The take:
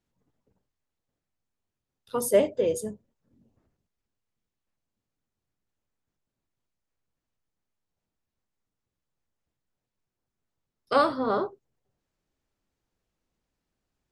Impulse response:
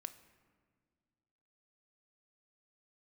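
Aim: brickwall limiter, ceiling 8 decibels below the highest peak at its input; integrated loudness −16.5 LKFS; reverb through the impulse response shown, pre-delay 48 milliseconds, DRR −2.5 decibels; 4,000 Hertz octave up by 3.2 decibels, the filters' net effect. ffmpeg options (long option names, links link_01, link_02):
-filter_complex "[0:a]equalizer=frequency=4000:width_type=o:gain=4,alimiter=limit=-17dB:level=0:latency=1,asplit=2[link_01][link_02];[1:a]atrim=start_sample=2205,adelay=48[link_03];[link_02][link_03]afir=irnorm=-1:irlink=0,volume=6.5dB[link_04];[link_01][link_04]amix=inputs=2:normalize=0,volume=9dB"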